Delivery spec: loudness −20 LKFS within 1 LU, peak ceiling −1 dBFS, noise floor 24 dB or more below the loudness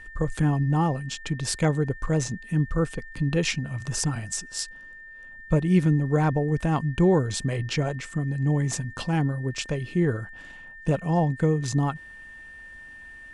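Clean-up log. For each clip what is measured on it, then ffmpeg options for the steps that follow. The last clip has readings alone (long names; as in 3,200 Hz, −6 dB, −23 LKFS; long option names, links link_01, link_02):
interfering tone 1,800 Hz; level of the tone −42 dBFS; integrated loudness −25.5 LKFS; sample peak −10.0 dBFS; target loudness −20.0 LKFS
→ -af "bandreject=frequency=1800:width=30"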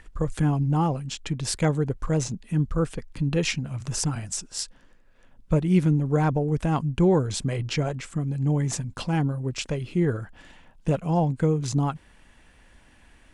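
interfering tone none found; integrated loudness −26.0 LKFS; sample peak −10.0 dBFS; target loudness −20.0 LKFS
→ -af "volume=6dB"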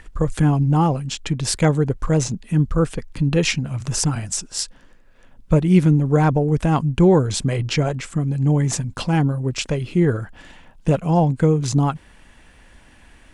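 integrated loudness −20.0 LKFS; sample peak −4.0 dBFS; background noise floor −50 dBFS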